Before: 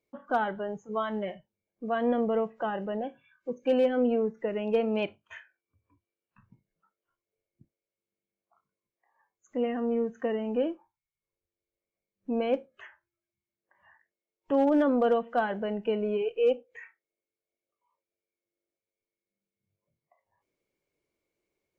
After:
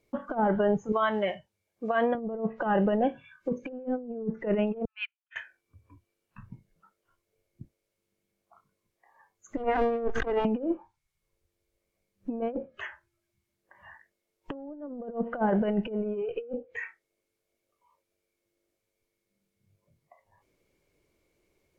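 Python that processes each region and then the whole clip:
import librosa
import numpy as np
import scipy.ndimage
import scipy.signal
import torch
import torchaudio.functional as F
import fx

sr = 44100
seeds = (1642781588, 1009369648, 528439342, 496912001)

y = fx.chain(x, sr, fx.highpass(hz=69.0, slope=12),
    fx.peak_eq(hz=210.0, db=-11.0, octaves=2.3), at=(0.92, 2.15))
y = fx.chain(y, sr, fx.steep_highpass(hz=1400.0, slope=48),
    fx.air_absorb(metres=310.0),
    fx.upward_expand(threshold_db=-59.0, expansion=2.5), at=(4.85, 5.36))
y = fx.chain(y, sr, fx.lower_of_two(delay_ms=2.5),
    fx.pre_swell(db_per_s=80.0), at=(9.57, 10.45))
y = fx.env_lowpass_down(y, sr, base_hz=680.0, full_db=-23.0)
y = fx.low_shelf(y, sr, hz=110.0, db=10.5)
y = fx.over_compress(y, sr, threshold_db=-32.0, ratio=-0.5)
y = F.gain(torch.from_numpy(y), 4.5).numpy()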